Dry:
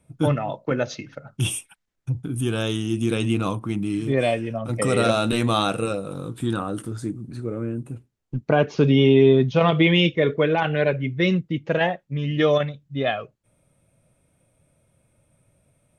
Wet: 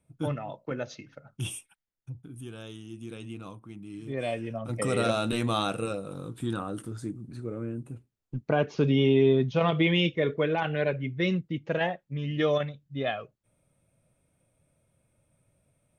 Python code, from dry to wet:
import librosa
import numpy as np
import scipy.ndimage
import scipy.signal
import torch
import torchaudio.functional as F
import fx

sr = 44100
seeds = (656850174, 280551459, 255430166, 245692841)

y = fx.gain(x, sr, db=fx.line((1.55, -10.0), (2.55, -18.0), (3.83, -18.0), (4.45, -6.5)))